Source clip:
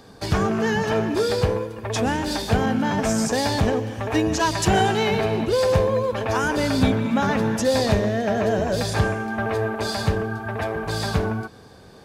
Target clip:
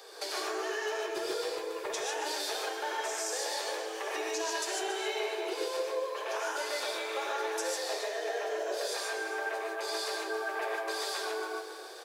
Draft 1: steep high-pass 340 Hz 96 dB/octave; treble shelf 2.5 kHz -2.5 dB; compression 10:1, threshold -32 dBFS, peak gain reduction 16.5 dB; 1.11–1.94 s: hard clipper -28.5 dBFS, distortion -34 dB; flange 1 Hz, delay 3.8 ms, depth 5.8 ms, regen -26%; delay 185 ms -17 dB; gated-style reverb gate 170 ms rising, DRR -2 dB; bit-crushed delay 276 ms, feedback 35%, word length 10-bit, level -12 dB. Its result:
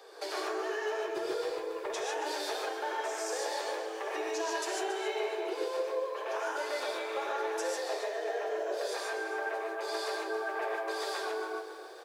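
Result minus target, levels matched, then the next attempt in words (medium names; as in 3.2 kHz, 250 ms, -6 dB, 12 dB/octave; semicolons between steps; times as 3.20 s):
4 kHz band -4.0 dB
steep high-pass 340 Hz 96 dB/octave; treble shelf 2.5 kHz +7.5 dB; compression 10:1, threshold -32 dBFS, peak gain reduction 17.5 dB; 1.11–1.94 s: hard clipper -28.5 dBFS, distortion -32 dB; flange 1 Hz, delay 3.8 ms, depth 5.8 ms, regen -26%; delay 185 ms -17 dB; gated-style reverb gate 170 ms rising, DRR -2 dB; bit-crushed delay 276 ms, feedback 35%, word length 10-bit, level -12 dB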